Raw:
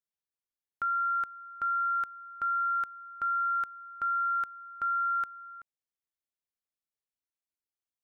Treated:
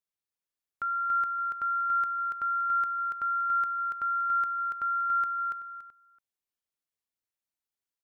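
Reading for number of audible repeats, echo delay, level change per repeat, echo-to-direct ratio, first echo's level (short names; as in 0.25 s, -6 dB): 2, 0.284 s, -11.5 dB, -3.0 dB, -3.5 dB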